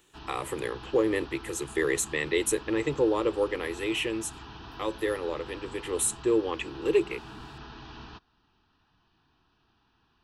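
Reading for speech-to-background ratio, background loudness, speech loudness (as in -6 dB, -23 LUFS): 16.0 dB, -45.0 LUFS, -29.0 LUFS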